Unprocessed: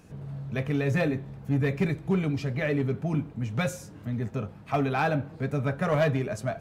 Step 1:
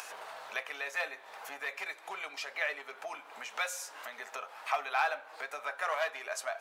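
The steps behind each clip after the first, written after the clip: compressor 3:1, threshold -33 dBFS, peak gain reduction 10 dB; HPF 770 Hz 24 dB/oct; upward compressor, threshold -43 dBFS; gain +7 dB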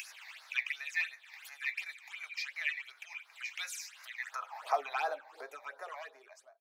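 ending faded out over 1.87 s; phaser stages 8, 2.8 Hz, lowest notch 380–3100 Hz; high-pass sweep 2300 Hz -> 360 Hz, 4.16–4.81

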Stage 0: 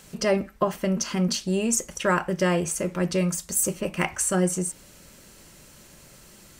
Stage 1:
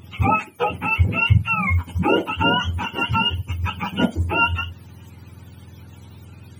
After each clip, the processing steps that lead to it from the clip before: spectrum mirrored in octaves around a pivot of 710 Hz; gain +6 dB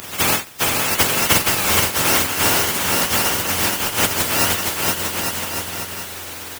spectral contrast lowered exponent 0.12; bouncing-ball echo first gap 0.47 s, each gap 0.8×, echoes 5; three-band squash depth 40%; gain +1.5 dB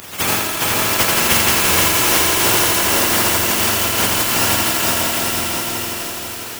on a send: multi-head echo 0.165 s, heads all three, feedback 54%, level -9.5 dB; on the sum: lo-fi delay 84 ms, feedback 80%, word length 5-bit, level -3.5 dB; gain -1.5 dB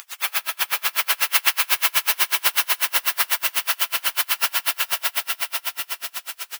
HPF 1200 Hz 12 dB/oct; dynamic EQ 7300 Hz, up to -8 dB, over -36 dBFS, Q 1.5; dB-linear tremolo 8.1 Hz, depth 34 dB; gain +2.5 dB

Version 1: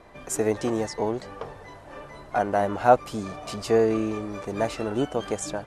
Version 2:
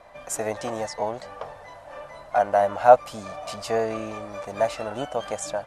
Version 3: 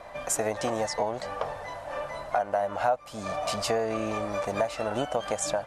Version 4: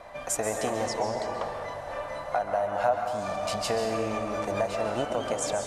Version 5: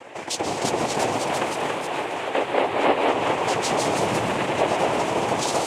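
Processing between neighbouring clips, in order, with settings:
resonant low shelf 480 Hz -6 dB, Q 3
compressor 5:1, threshold -30 dBFS, peak gain reduction 20 dB; gain +5.5 dB
plate-style reverb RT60 1.8 s, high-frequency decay 0.6×, pre-delay 0.12 s, DRR 3.5 dB; gain -1.5 dB
noise vocoder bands 4; echoes that change speed 0.361 s, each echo +1 st, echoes 3; gain +4 dB

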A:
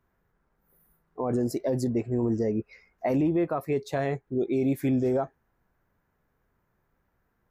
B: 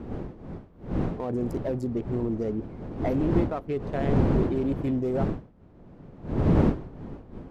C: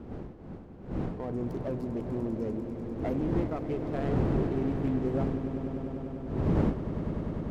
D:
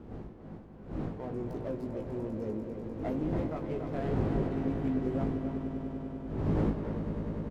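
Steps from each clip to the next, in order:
Wiener smoothing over 25 samples; wind noise 280 Hz -27 dBFS; gain -2 dB
swelling echo 99 ms, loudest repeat 5, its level -13 dB; running maximum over 5 samples; gain -5.5 dB
doubler 19 ms -5.5 dB; speakerphone echo 0.28 s, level -7 dB; gain -4 dB

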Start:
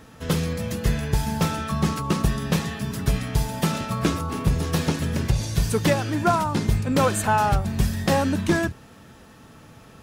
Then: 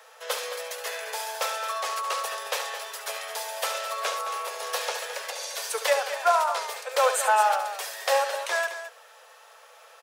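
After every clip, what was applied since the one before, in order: steep high-pass 480 Hz 72 dB/oct; on a send: loudspeakers at several distances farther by 24 m -10 dB, 74 m -11 dB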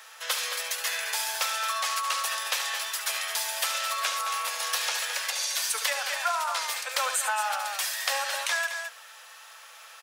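Bessel high-pass 1600 Hz, order 2; compressor, threshold -32 dBFS, peak gain reduction 8.5 dB; gain +7.5 dB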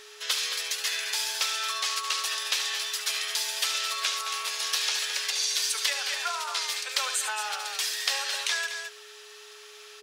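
bell 4300 Hz +12.5 dB 2.4 oct; whine 420 Hz -43 dBFS; gain -8.5 dB

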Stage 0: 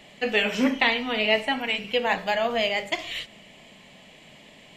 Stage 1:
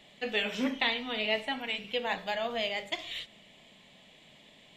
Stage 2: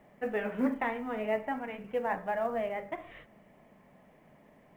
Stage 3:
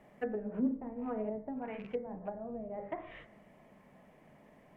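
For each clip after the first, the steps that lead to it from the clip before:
bell 3600 Hz +9 dB 0.24 oct; gain -8.5 dB
inverse Chebyshev low-pass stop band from 5300 Hz, stop band 60 dB; companded quantiser 8-bit; gain +2 dB
rattling part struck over -45 dBFS, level -41 dBFS; treble ducked by the level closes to 310 Hz, closed at -29 dBFS; de-hum 57.51 Hz, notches 38

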